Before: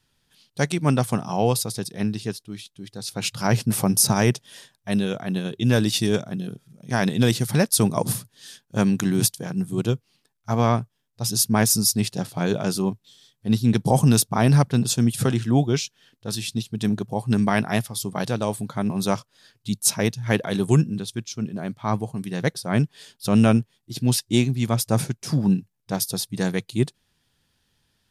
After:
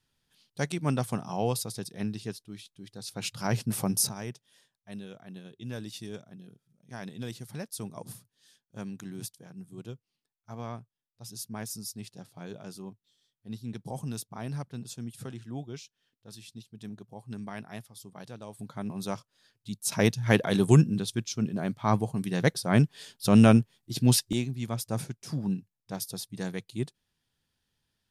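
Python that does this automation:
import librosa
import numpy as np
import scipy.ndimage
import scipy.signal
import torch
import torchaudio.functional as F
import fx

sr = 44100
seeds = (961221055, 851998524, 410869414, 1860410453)

y = fx.gain(x, sr, db=fx.steps((0.0, -8.0), (4.09, -19.0), (18.59, -11.0), (19.92, -1.0), (24.33, -10.5)))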